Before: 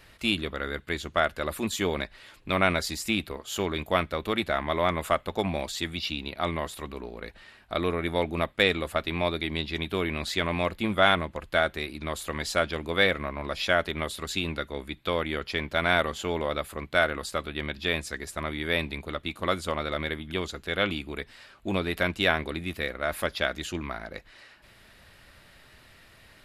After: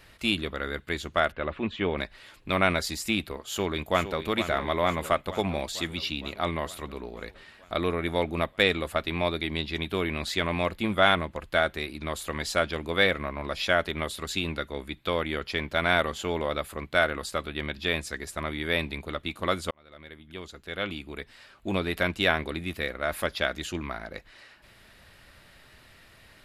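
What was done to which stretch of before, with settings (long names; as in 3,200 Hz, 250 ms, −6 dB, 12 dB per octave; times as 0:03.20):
0:01.32–0:01.98: Chebyshev low-pass filter 2,900 Hz, order 3
0:03.48–0:04.20: delay throw 460 ms, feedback 70%, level −10 dB
0:19.71–0:21.78: fade in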